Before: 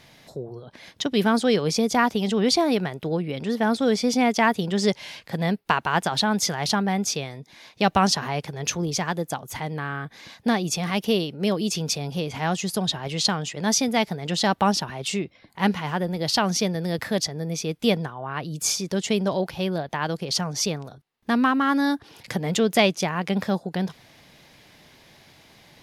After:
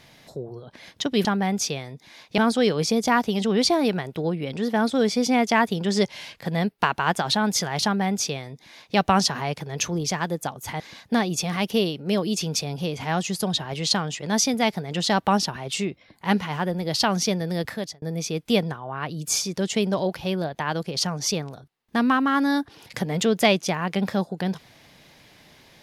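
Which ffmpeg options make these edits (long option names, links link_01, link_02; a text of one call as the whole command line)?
ffmpeg -i in.wav -filter_complex "[0:a]asplit=5[link_01][link_02][link_03][link_04][link_05];[link_01]atrim=end=1.252[link_06];[link_02]atrim=start=6.708:end=7.842[link_07];[link_03]atrim=start=1.248:end=9.672[link_08];[link_04]atrim=start=10.138:end=17.36,asetpts=PTS-STARTPTS,afade=type=out:start_time=6.802:duration=0.42[link_09];[link_05]atrim=start=17.36,asetpts=PTS-STARTPTS,afade=type=in:duration=0.004:curve=hsin[link_10];[link_06][link_07]acrossfade=duration=0.004:curve1=hsin:curve2=hsin[link_11];[link_11][link_08]acrossfade=duration=0.004:curve1=hsin:curve2=hsin[link_12];[link_09][link_10]concat=n=2:v=0:a=1[link_13];[link_12][link_13]acrossfade=duration=0.004:curve1=hsin:curve2=hsin" out.wav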